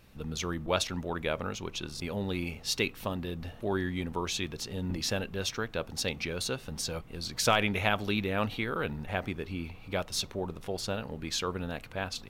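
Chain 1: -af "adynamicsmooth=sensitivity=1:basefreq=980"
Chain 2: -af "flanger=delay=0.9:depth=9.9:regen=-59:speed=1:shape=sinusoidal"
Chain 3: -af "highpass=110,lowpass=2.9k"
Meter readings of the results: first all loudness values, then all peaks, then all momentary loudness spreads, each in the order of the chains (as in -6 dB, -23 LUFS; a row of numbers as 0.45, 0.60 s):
-35.5, -37.0, -34.5 LUFS; -11.5, -15.0, -9.0 dBFS; 10, 8, 9 LU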